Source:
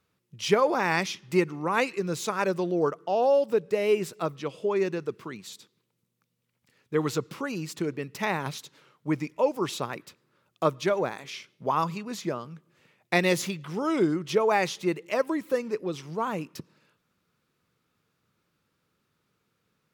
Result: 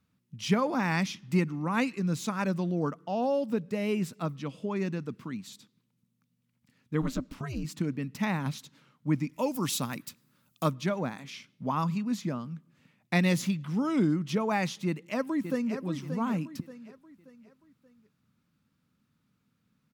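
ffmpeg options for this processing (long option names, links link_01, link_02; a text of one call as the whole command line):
ffmpeg -i in.wav -filter_complex "[0:a]asplit=3[link_01][link_02][link_03];[link_01]afade=type=out:start_time=7.01:duration=0.02[link_04];[link_02]aeval=exprs='val(0)*sin(2*PI*130*n/s)':channel_layout=same,afade=type=in:start_time=7.01:duration=0.02,afade=type=out:start_time=7.63:duration=0.02[link_05];[link_03]afade=type=in:start_time=7.63:duration=0.02[link_06];[link_04][link_05][link_06]amix=inputs=3:normalize=0,asplit=3[link_07][link_08][link_09];[link_07]afade=type=out:start_time=9.32:duration=0.02[link_10];[link_08]aemphasis=mode=production:type=75kf,afade=type=in:start_time=9.32:duration=0.02,afade=type=out:start_time=10.68:duration=0.02[link_11];[link_09]afade=type=in:start_time=10.68:duration=0.02[link_12];[link_10][link_11][link_12]amix=inputs=3:normalize=0,asplit=2[link_13][link_14];[link_14]afade=type=in:start_time=14.86:duration=0.01,afade=type=out:start_time=15.82:duration=0.01,aecho=0:1:580|1160|1740|2320:0.354813|0.141925|0.0567701|0.0227081[link_15];[link_13][link_15]amix=inputs=2:normalize=0,lowshelf=frequency=310:width_type=q:width=3:gain=6.5,volume=-4.5dB" out.wav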